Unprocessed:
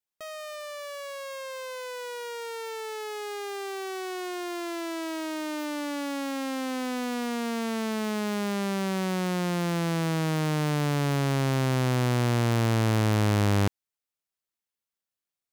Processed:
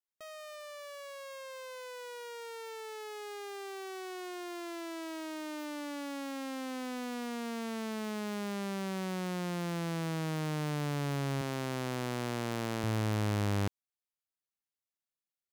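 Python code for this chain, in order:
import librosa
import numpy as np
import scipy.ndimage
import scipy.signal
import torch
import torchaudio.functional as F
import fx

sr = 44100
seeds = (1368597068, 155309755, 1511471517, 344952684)

y = fx.highpass(x, sr, hz=180.0, slope=12, at=(11.41, 12.84))
y = y * 10.0 ** (-8.0 / 20.0)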